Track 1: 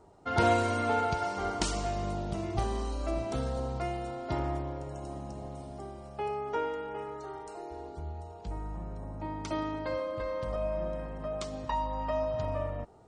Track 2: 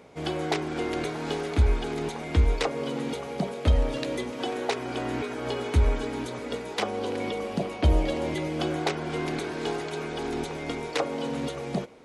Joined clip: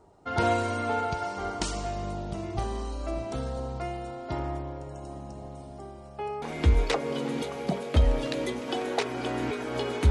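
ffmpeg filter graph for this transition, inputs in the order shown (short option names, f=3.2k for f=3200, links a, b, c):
-filter_complex "[0:a]apad=whole_dur=10.1,atrim=end=10.1,atrim=end=6.422[a];[1:a]atrim=start=2.128:end=5.81[b];[a][b]acrossfade=d=0.004:c1=hsin:c2=hsin"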